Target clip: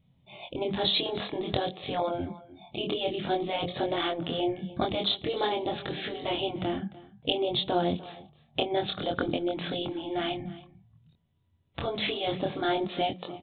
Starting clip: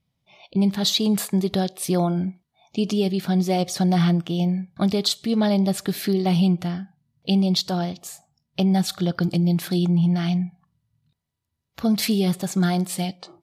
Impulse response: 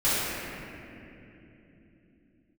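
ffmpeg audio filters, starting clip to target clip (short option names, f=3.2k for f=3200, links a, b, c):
-filter_complex "[0:a]aresample=8000,aresample=44100,equalizer=f=1.6k:w=0.62:g=-8.5,asplit=2[a][b];[b]acompressor=threshold=-37dB:ratio=4,volume=-2dB[c];[a][c]amix=inputs=2:normalize=0,afftfilt=real='re*lt(hypot(re,im),0.316)':imag='im*lt(hypot(re,im),0.316)':win_size=1024:overlap=0.75,asplit=2[d][e];[e]aecho=0:1:298:0.112[f];[d][f]amix=inputs=2:normalize=0,flanger=delay=22.5:depth=3.8:speed=0.52,volume=8dB"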